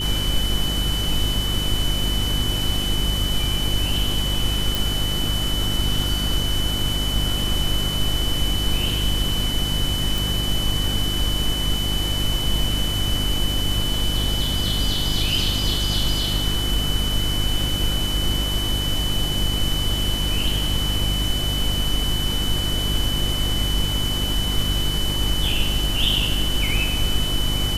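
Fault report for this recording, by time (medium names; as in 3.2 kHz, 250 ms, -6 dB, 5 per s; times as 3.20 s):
hum 50 Hz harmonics 7 -26 dBFS
whine 3 kHz -25 dBFS
4.75 s: pop
10.18 s: pop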